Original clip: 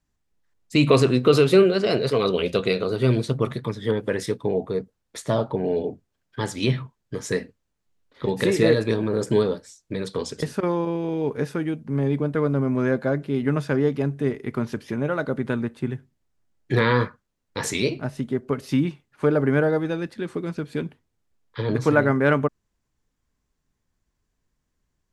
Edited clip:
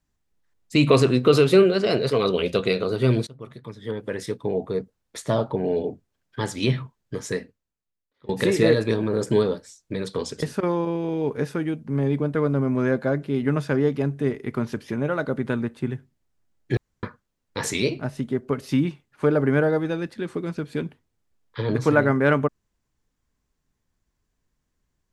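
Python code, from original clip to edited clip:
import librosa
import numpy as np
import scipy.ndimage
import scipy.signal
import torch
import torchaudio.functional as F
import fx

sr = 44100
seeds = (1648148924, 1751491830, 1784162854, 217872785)

y = fx.edit(x, sr, fx.fade_in_from(start_s=3.27, length_s=1.53, floor_db=-23.5),
    fx.fade_out_to(start_s=7.17, length_s=1.12, curve='qua', floor_db=-22.0),
    fx.room_tone_fill(start_s=16.77, length_s=0.26), tone=tone)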